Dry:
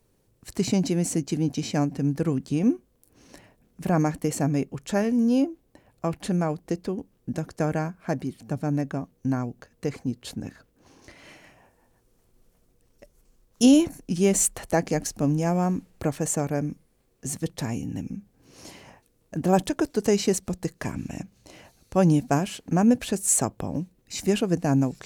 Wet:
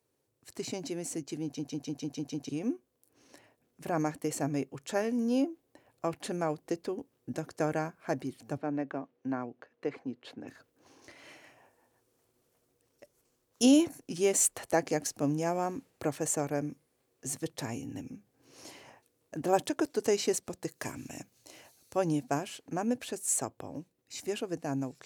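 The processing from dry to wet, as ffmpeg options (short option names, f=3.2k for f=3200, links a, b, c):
-filter_complex "[0:a]asettb=1/sr,asplit=3[a][b][c];[a]atrim=end=8.574[d];[b]atrim=start=8.57:end=10.48,asetpts=PTS-STARTPTS,afade=t=in:d=0.004:c=qsin,afade=t=out:st=1.906:d=0.004:c=qsin,acrossover=split=200 3500:gain=0.224 1 0.0794[e][f][g];[e][f][g]amix=inputs=3:normalize=0[h];[c]atrim=start=10.476[i];[d][h]acrossfade=d=0.004:c1=hsin:c2=qsin[j];[j][i]acrossfade=d=0.004:c1=qsin:c2=hsin,asettb=1/sr,asplit=3[k][l][m];[k]atrim=end=20.694[n];[l]atrim=start=20.69:end=21.96,asetpts=PTS-STARTPTS,afade=t=in:d=0.004:c=qsin,afade=t=out:st=1.266:d=0.004:c=qsin,aemphasis=mode=production:type=cd[o];[m]atrim=start=21.956[p];[n][o]acrossfade=d=0.004:c1=hsin:c2=qsin[q];[q][p]acrossfade=d=0.004:c1=qsin:c2=hsin,asplit=8[r][s][t][u][v][w][x][y];[r]atrim=end=1.592[z];[s]atrim=start=1.438:end=1.592[aa];[t]atrim=start=1.438:end=1.592[ab];[u]atrim=start=1.438:end=1.592[ac];[v]atrim=start=1.438:end=1.592[ad];[w]atrim=start=1.438:end=1.592[ae];[x]atrim=start=1.438:end=1.592[af];[y]atrim=start=2.488[ag];[z][aa]acrossfade=d=0.004:c1=hsin:c2=hsin[ah];[ah][ab]acrossfade=d=0.004:c1=hsin:c2=hsin[ai];[ai][ac]acrossfade=d=0.004:c1=hsin:c2=hsin[aj];[aj][ad]acrossfade=d=0.004:c1=hsin:c2=hsin[ak];[ak][ae]acrossfade=d=0.004:c1=hsin:c2=hsin[al];[al][af]acrossfade=d=0.004:c1=hsin:c2=hsin[am];[am][ag]acrossfade=d=0.004:c1=hsin:c2=hsin,highpass=140,equalizer=f=190:w=4:g=-15,dynaudnorm=f=650:g=13:m=5.5dB,volume=-8.5dB"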